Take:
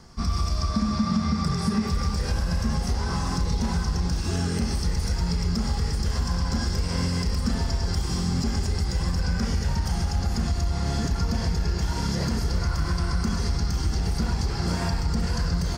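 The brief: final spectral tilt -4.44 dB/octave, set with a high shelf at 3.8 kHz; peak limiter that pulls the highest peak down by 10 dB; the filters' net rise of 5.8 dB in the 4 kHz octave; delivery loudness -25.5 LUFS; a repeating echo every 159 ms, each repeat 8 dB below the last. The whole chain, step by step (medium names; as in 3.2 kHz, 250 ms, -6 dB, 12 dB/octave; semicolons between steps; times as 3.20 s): treble shelf 3.8 kHz +3.5 dB; peaking EQ 4 kHz +5 dB; peak limiter -22 dBFS; feedback delay 159 ms, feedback 40%, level -8 dB; trim +4.5 dB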